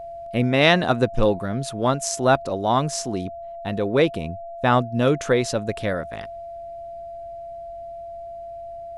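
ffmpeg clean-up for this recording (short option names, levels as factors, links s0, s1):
-af "bandreject=f=680:w=30"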